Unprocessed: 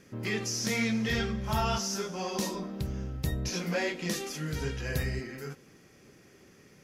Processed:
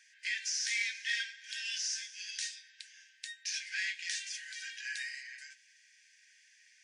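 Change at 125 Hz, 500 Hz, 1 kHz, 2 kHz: under -40 dB, under -40 dB, under -40 dB, 0.0 dB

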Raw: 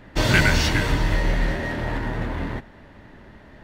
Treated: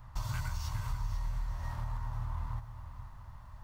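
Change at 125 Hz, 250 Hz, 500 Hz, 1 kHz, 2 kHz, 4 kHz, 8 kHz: -12.5, -26.5, -30.0, -15.0, -27.0, -24.0, -17.5 dB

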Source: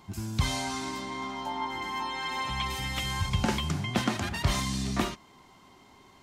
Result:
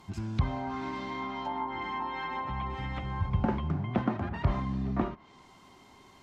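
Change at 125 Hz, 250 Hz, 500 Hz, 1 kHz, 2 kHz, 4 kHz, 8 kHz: 0.0 dB, 0.0 dB, 0.0 dB, -1.0 dB, -6.5 dB, -14.5 dB, under -20 dB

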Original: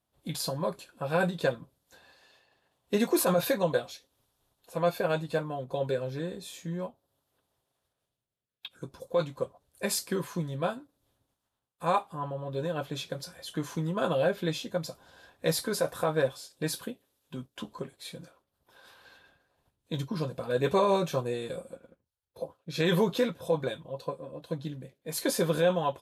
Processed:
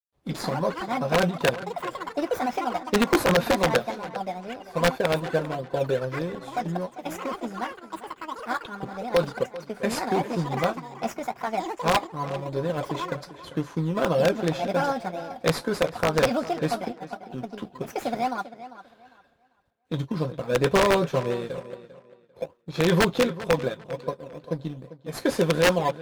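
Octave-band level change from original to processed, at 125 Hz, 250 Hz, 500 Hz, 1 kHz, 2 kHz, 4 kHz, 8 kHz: +5.0, +5.5, +5.0, +7.5, +8.5, +5.0, +0.5 dB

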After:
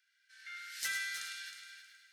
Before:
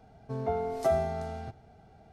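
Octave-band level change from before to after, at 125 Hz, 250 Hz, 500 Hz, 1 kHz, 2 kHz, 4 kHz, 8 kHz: under -40 dB, under -35 dB, under -40 dB, -20.0 dB, +10.5 dB, +12.0 dB, +11.5 dB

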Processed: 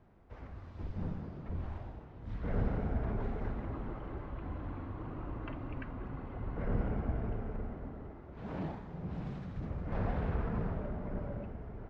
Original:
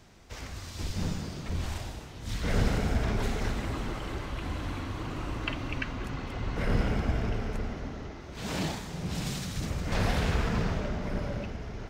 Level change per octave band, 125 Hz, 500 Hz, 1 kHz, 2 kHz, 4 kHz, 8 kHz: -6.0 dB, -6.0 dB, -7.5 dB, -14.0 dB, under -20 dB, under -35 dB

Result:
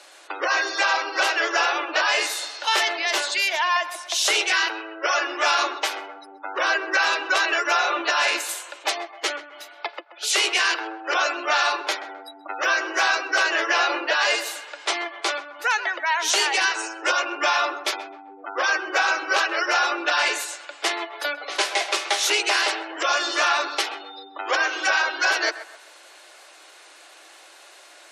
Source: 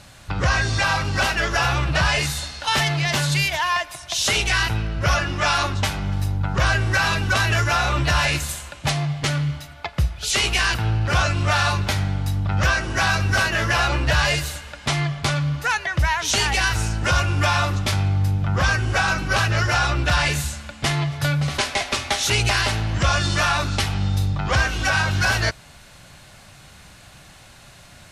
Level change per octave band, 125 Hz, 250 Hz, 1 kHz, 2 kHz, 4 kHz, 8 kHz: under -40 dB, -9.5 dB, 0.0 dB, 0.0 dB, -0.5 dB, -1.0 dB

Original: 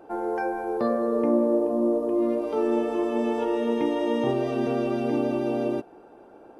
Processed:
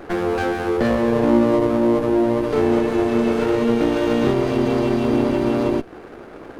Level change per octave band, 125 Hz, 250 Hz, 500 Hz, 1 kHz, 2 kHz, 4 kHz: +12.5, +7.0, +5.5, +5.5, +10.0, +10.0 dB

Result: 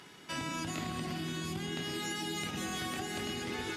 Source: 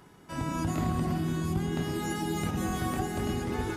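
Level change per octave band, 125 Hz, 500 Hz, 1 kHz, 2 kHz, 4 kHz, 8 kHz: -11.0, -6.5, -6.0, +0.5, +5.0, 0.0 dB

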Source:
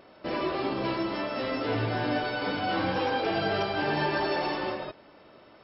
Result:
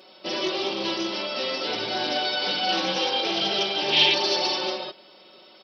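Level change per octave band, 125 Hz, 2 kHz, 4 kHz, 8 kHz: -9.5 dB, +3.0 dB, +15.0 dB, n/a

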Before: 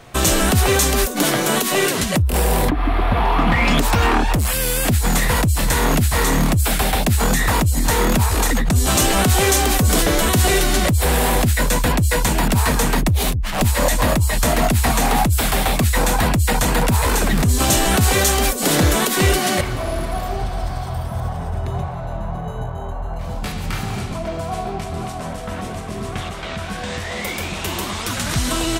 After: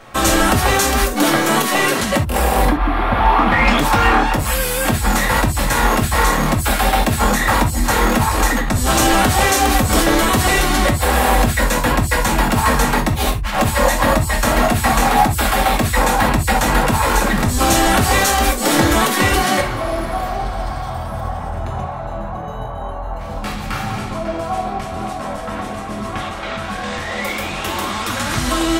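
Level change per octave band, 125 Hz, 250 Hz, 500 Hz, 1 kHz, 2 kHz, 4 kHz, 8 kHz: -1.5, +2.0, +2.0, +6.0, +4.0, +1.0, -1.0 dB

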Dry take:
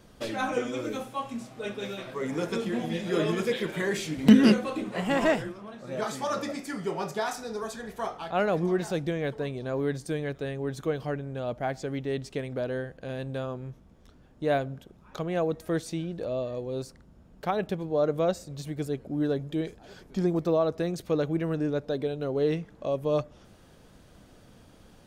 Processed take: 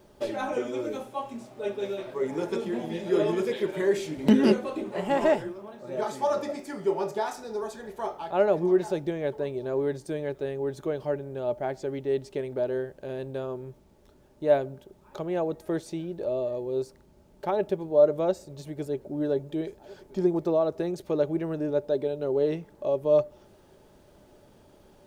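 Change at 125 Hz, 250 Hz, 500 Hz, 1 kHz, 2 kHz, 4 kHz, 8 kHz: -4.5 dB, -2.0 dB, +3.5 dB, 0.0 dB, -4.5 dB, -5.0 dB, n/a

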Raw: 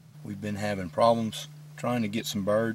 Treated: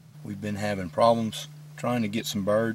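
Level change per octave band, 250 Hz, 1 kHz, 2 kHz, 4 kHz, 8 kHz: +1.5, +1.5, +1.5, +1.5, +1.5 dB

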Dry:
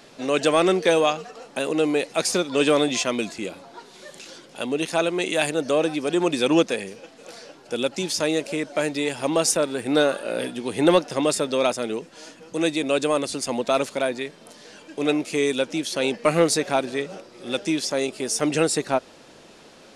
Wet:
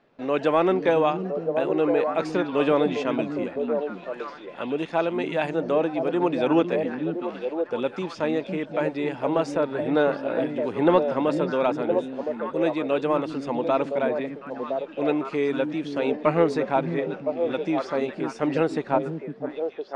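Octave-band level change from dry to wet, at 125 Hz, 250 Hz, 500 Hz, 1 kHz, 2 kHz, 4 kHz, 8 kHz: +0.5 dB, -0.5 dB, -0.5 dB, +0.5 dB, -4.5 dB, -12.5 dB, under -20 dB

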